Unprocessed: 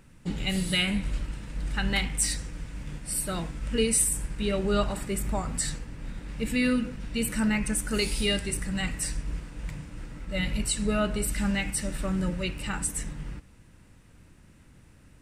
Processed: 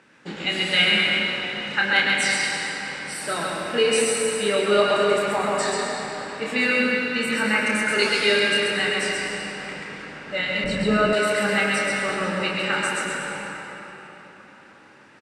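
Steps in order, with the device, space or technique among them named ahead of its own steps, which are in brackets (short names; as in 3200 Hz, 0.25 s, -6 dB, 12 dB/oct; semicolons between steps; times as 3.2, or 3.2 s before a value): station announcement (BPF 370–4900 Hz; bell 1600 Hz +6 dB 0.32 oct; loudspeakers at several distances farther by 10 m -5 dB, 46 m -3 dB; reverb RT60 4.4 s, pre-delay 94 ms, DRR -0.5 dB); 10.64–11.13 RIAA curve playback; gain +5.5 dB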